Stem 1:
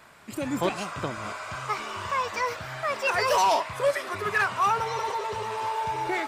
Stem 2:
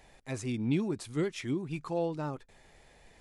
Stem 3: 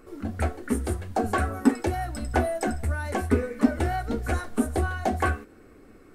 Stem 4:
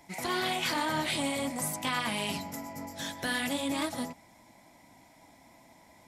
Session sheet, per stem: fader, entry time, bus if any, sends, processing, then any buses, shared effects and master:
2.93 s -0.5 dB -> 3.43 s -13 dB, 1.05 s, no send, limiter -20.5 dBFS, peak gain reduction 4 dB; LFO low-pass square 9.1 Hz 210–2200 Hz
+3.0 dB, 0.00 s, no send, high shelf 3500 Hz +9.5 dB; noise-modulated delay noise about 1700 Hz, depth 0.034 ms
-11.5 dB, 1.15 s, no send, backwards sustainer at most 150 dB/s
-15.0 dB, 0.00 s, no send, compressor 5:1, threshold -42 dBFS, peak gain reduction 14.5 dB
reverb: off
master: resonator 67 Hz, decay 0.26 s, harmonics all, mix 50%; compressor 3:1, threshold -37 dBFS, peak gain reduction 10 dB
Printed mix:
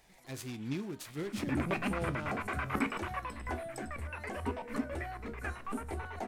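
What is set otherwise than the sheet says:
stem 2 +3.0 dB -> -4.5 dB; master: missing compressor 3:1, threshold -37 dBFS, peak gain reduction 10 dB

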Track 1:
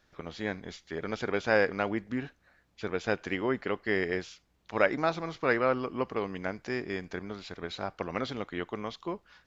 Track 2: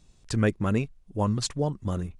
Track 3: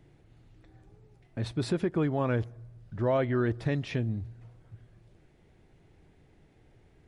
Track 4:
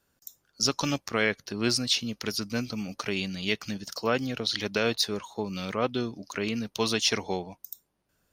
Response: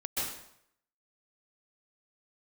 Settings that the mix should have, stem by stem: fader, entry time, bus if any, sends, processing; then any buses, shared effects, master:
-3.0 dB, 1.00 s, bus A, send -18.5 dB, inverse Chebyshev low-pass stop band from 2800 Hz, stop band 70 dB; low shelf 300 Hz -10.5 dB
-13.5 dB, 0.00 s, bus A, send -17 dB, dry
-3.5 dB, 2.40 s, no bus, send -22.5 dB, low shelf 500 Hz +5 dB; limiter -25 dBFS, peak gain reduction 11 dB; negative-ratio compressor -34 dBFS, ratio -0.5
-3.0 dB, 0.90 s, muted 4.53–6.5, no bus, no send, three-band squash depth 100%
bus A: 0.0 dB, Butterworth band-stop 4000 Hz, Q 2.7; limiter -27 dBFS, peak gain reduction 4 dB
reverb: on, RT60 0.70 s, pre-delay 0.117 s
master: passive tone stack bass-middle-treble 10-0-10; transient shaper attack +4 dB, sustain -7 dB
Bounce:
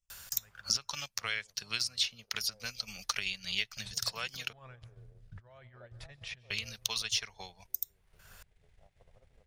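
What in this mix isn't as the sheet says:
stem 1 -3.0 dB -> -11.5 dB; stem 2 -13.5 dB -> -21.5 dB; stem 4: entry 0.90 s -> 0.10 s

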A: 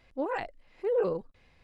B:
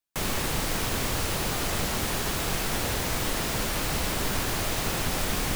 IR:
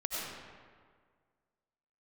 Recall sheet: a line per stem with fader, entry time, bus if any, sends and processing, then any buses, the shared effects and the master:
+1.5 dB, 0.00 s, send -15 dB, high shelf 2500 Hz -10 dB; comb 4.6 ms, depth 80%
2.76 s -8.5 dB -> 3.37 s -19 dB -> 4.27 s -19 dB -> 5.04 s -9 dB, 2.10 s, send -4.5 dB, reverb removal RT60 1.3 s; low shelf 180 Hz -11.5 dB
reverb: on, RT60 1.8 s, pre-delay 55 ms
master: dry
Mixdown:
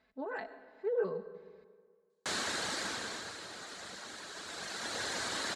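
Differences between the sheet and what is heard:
stem A +1.5 dB -> -9.0 dB; master: extra speaker cabinet 110–8700 Hz, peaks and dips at 140 Hz -8 dB, 1600 Hz +8 dB, 2600 Hz -4 dB, 4100 Hz +8 dB, 7200 Hz +4 dB

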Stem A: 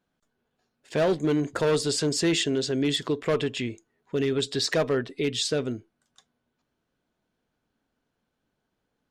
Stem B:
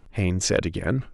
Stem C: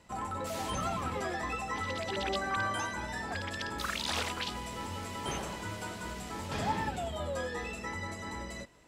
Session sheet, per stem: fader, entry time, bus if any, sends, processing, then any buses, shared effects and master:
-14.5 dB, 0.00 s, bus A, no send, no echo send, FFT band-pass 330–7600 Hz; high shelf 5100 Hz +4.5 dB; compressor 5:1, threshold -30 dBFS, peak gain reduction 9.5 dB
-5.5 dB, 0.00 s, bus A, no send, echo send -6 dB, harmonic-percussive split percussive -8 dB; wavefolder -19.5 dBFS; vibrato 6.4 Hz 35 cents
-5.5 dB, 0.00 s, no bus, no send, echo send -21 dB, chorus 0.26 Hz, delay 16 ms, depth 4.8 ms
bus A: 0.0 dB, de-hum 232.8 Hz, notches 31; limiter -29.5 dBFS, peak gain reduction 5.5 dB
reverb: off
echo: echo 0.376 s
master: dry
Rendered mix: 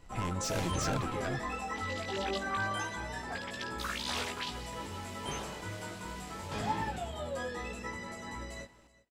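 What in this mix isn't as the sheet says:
stem A -14.5 dB -> -23.0 dB; stem B: missing harmonic-percussive split percussive -8 dB; stem C -5.5 dB -> +1.0 dB

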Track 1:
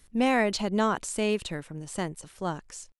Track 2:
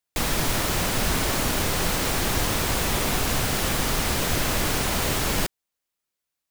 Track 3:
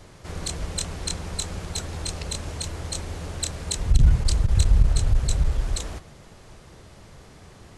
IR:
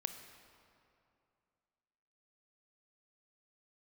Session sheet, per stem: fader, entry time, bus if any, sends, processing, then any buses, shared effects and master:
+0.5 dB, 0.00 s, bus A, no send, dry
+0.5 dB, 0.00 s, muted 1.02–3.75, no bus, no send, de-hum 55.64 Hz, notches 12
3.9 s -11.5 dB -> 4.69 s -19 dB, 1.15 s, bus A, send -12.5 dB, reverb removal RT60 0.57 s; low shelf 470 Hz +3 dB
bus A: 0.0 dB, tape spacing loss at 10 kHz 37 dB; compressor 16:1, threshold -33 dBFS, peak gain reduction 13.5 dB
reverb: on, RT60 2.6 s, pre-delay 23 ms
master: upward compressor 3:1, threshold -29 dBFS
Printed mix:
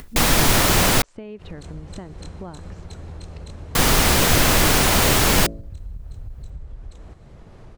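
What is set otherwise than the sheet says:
stem 2 +0.5 dB -> +8.0 dB; stem 3: missing reverb removal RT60 0.57 s

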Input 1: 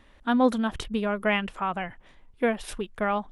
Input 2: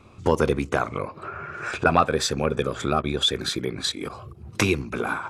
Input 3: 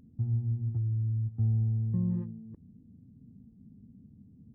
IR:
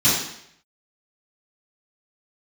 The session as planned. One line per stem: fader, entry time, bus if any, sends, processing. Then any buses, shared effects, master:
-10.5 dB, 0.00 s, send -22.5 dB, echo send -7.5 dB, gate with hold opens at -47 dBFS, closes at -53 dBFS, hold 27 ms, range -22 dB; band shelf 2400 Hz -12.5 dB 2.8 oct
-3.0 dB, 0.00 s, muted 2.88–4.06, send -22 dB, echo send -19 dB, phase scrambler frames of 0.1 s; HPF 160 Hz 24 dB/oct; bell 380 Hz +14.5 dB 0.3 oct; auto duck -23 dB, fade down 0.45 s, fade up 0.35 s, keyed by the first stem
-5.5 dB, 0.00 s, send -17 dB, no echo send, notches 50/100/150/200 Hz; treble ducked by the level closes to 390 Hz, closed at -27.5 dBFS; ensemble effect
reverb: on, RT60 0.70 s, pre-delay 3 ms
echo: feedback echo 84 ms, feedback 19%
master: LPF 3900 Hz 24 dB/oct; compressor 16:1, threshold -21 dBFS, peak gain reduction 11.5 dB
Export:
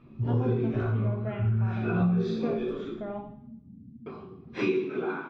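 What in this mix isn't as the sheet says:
stem 2 -3.0 dB -> -10.5 dB; stem 3 -5.5 dB -> +1.5 dB

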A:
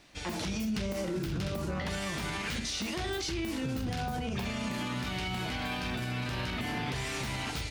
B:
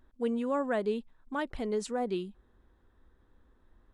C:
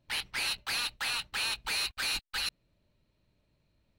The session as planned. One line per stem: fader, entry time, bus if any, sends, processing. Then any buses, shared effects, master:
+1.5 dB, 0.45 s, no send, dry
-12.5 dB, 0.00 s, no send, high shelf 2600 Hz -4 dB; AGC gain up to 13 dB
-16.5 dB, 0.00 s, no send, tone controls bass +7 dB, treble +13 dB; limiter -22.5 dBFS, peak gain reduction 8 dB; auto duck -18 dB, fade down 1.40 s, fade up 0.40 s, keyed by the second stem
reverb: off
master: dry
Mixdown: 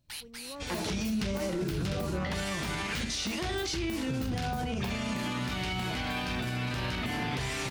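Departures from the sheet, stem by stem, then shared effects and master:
stem B -12.5 dB -> -24.5 dB; stem C -16.5 dB -> -6.0 dB

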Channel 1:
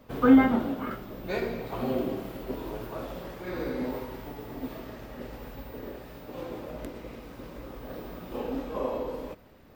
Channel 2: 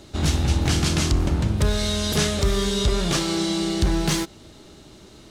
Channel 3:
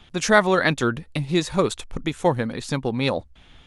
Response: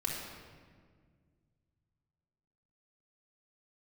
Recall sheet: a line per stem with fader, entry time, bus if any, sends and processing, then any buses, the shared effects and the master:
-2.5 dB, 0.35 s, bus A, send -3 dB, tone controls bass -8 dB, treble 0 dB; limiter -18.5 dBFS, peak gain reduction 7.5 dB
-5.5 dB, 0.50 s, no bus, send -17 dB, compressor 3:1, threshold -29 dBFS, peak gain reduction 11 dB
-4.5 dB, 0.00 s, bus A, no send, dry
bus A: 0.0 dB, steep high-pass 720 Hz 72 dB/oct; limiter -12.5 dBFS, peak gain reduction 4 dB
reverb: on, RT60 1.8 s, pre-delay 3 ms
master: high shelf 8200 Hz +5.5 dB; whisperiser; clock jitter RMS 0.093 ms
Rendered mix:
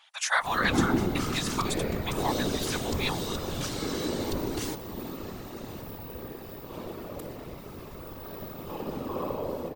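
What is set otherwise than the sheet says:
stem 1: missing tone controls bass -8 dB, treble 0 dB; master: missing clock jitter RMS 0.093 ms

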